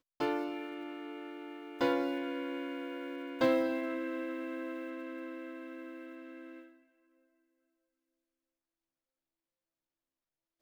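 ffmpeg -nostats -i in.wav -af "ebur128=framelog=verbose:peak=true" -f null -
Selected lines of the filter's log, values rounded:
Integrated loudness:
  I:         -36.7 LUFS
  Threshold: -47.2 LUFS
Loudness range:
  LRA:        18.0 LU
  Threshold: -58.1 LUFS
  LRA low:   -52.7 LUFS
  LRA high:  -34.6 LUFS
True peak:
  Peak:      -15.4 dBFS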